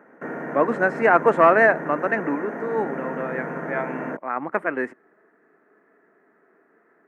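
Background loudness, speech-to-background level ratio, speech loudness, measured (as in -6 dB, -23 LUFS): -32.0 LUFS, 10.0 dB, -22.0 LUFS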